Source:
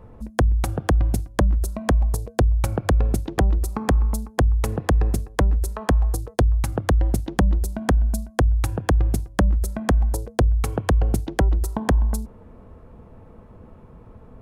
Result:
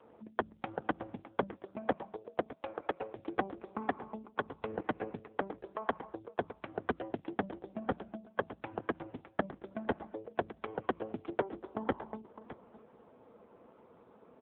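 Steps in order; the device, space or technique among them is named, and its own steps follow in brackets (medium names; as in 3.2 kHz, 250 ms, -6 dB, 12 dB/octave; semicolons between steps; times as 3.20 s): 1.48–3.15 s: high-pass 120 Hz -> 410 Hz 12 dB/octave; satellite phone (band-pass 320–3100 Hz; delay 610 ms -15 dB; trim -4.5 dB; AMR-NB 5.9 kbps 8 kHz)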